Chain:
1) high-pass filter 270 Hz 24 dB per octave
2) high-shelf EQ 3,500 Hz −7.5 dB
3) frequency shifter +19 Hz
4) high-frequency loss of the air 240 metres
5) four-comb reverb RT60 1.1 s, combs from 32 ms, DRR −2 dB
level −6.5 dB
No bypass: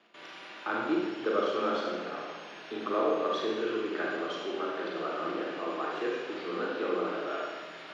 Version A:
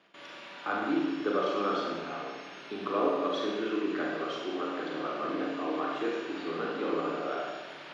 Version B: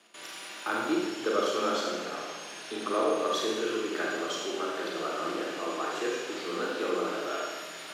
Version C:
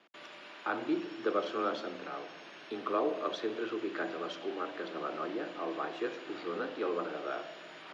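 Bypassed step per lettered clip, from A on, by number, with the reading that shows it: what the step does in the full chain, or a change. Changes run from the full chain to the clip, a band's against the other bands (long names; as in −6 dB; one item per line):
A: 3, 125 Hz band +3.0 dB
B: 4, 4 kHz band +5.0 dB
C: 5, change in integrated loudness −4.0 LU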